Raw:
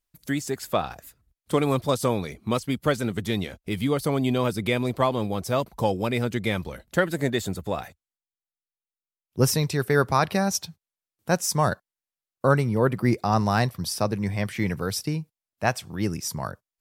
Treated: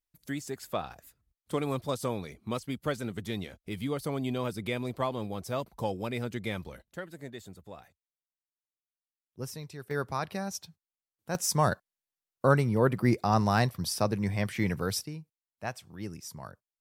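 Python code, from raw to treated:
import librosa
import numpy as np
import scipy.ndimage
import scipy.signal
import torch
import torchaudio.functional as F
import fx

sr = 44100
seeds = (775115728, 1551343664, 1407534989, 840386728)

y = fx.gain(x, sr, db=fx.steps((0.0, -8.5), (6.82, -18.0), (9.91, -11.5), (11.35, -3.0), (15.04, -12.5)))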